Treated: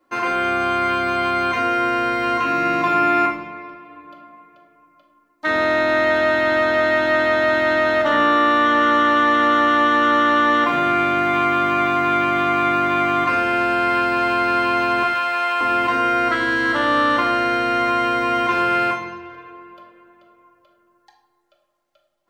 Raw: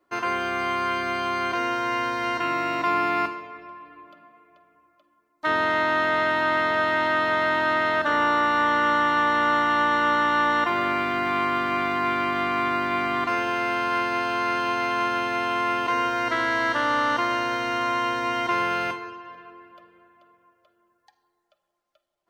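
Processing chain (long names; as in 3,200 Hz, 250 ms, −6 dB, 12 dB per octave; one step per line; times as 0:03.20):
0:15.03–0:15.61: high-pass filter 730 Hz 12 dB per octave
rectangular room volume 840 cubic metres, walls furnished, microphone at 2.2 metres
level +3 dB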